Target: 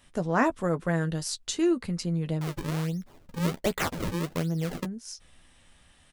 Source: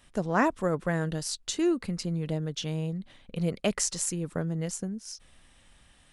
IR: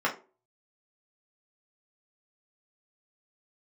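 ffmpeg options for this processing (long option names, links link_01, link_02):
-filter_complex "[0:a]asettb=1/sr,asplit=3[link_01][link_02][link_03];[link_01]atrim=end=2.414[link_04];[link_02]atrim=start=2.41:end=4.85,asetpts=PTS-STARTPTS,afade=type=in:duration=0.004:curve=qsin,afade=type=out:start_time=2.436:duration=0.004:curve=qsin,acrusher=samples=36:mix=1:aa=0.000001:lfo=1:lforange=57.6:lforate=1.3[link_05];[link_03]atrim=start=4.846[link_06];[link_04][link_05]acrossfade=duration=0.004:curve1=hsin:curve2=qsin[link_07];[link_07][link_06]acrossfade=duration=0.004:curve1=qsin:curve2=hsin,asplit=2[link_08][link_09];[link_09]adelay=12,volume=-9.5dB[link_10];[link_08][link_10]amix=inputs=2:normalize=0"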